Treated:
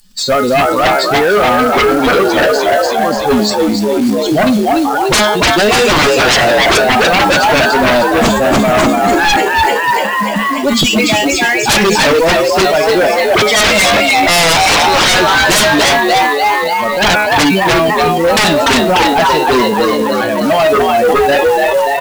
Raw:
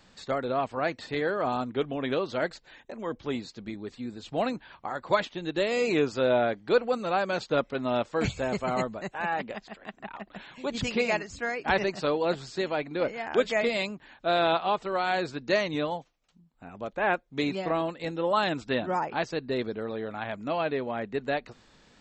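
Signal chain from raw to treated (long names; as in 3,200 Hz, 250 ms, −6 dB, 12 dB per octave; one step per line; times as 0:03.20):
spectral dynamics exaggerated over time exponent 2
0:09.11–0:10.09: spectral tilt +4 dB per octave
0:10.84–0:11.49: downward compressor 6 to 1, threshold −39 dBFS, peak gain reduction 12 dB
0:17.88–0:18.37: Butterworth low-pass 540 Hz 96 dB per octave
tuned comb filter 210 Hz, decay 0.33 s, harmonics all, mix 80%
on a send: echo with shifted repeats 294 ms, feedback 54%, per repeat +68 Hz, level −4.5 dB
on the sum: sine wavefolder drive 19 dB, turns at −23 dBFS
floating-point word with a short mantissa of 2 bits
boost into a limiter +34.5 dB
level that may fall only so fast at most 31 dB per second
level −6 dB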